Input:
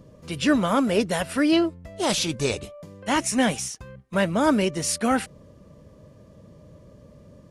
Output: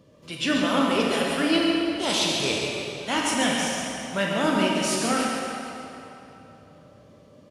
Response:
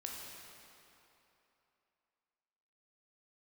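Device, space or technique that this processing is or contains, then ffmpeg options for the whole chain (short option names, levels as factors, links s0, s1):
PA in a hall: -filter_complex "[0:a]highpass=f=160:p=1,equalizer=f=3200:t=o:w=1.1:g=6.5,aecho=1:1:138:0.422[s0];[1:a]atrim=start_sample=2205[s1];[s0][s1]afir=irnorm=-1:irlink=0"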